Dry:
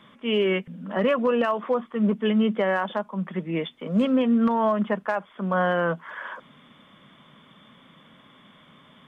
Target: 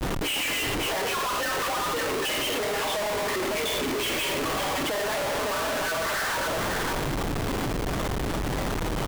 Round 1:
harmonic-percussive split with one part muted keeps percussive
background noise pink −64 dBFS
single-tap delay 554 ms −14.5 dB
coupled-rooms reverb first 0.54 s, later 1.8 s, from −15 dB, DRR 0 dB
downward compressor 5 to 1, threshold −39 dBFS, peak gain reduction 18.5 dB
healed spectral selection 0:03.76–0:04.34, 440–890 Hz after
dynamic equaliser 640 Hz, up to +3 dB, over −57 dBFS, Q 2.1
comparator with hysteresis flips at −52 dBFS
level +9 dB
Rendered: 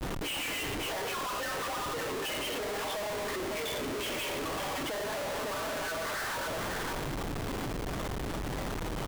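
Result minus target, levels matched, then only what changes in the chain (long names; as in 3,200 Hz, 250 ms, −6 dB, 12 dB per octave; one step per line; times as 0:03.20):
downward compressor: peak gain reduction +9 dB
change: downward compressor 5 to 1, threshold −27.5 dBFS, peak gain reduction 9.5 dB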